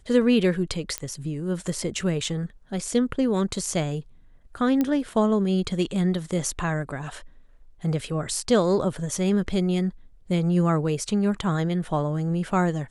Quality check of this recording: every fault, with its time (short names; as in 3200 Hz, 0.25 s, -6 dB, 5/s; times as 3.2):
0.98 pop -11 dBFS
4.81 pop -12 dBFS